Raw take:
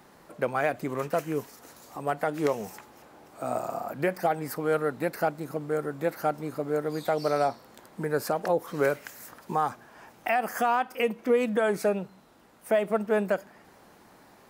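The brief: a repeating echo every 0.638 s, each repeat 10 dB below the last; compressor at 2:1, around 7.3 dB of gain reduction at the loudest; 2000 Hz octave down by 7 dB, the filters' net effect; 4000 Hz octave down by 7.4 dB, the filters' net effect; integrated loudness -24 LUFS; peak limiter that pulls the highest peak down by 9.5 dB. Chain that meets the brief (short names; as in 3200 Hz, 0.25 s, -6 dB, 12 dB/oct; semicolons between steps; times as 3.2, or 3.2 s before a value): bell 2000 Hz -8.5 dB; bell 4000 Hz -7 dB; compressor 2:1, threshold -34 dBFS; limiter -29.5 dBFS; feedback echo 0.638 s, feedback 32%, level -10 dB; gain +16 dB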